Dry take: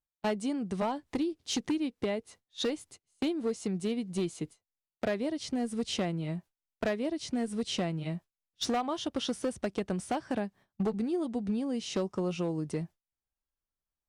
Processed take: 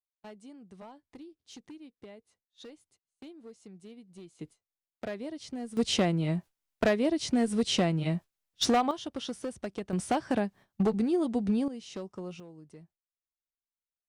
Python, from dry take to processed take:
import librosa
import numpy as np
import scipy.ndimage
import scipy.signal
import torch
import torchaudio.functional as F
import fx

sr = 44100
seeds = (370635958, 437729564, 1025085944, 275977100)

y = fx.gain(x, sr, db=fx.steps((0.0, -17.0), (4.39, -6.0), (5.77, 5.5), (8.91, -4.0), (9.93, 4.0), (11.68, -8.0), (12.4, -17.0)))